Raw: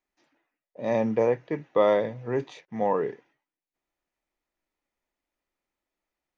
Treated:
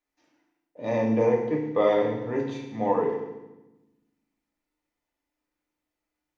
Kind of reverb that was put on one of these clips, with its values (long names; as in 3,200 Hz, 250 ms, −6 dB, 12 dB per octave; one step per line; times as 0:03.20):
feedback delay network reverb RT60 1 s, low-frequency decay 1.6×, high-frequency decay 0.95×, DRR −1 dB
level −3 dB